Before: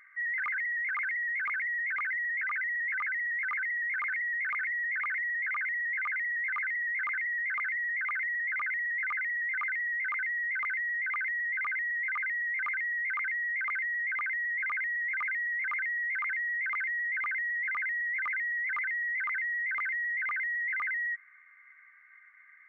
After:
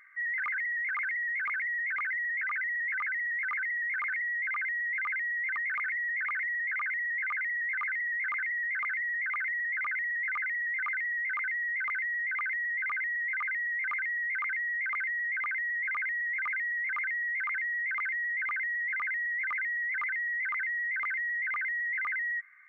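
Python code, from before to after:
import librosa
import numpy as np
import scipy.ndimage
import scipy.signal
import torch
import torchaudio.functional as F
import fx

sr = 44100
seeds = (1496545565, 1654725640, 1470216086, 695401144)

y = fx.edit(x, sr, fx.duplicate(start_s=16.0, length_s=1.25, to_s=4.32), tone=tone)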